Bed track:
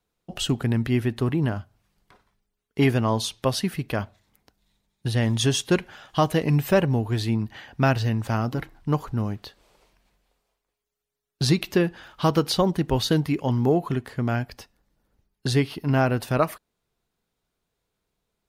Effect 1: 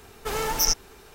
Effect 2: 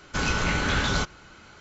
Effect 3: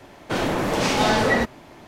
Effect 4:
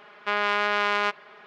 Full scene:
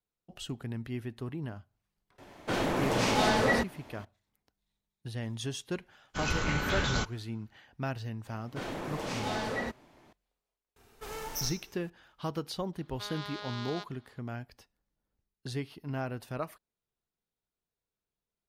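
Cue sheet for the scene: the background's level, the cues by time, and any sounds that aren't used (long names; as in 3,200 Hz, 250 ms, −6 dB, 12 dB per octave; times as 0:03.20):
bed track −14.5 dB
0:02.18: mix in 3 −6.5 dB
0:06.00: mix in 2 −6 dB + multiband upward and downward expander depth 100%
0:08.26: mix in 3 −14.5 dB
0:10.76: mix in 1 −13.5 dB + four-comb reverb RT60 0.46 s, combs from 25 ms, DRR 7.5 dB
0:12.73: mix in 4 −18 dB + high shelf with overshoot 3,100 Hz +7 dB, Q 3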